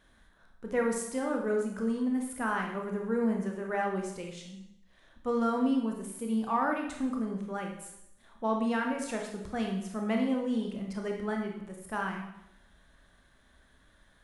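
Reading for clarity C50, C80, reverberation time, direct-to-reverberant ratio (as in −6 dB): 4.5 dB, 7.5 dB, 0.85 s, 1.0 dB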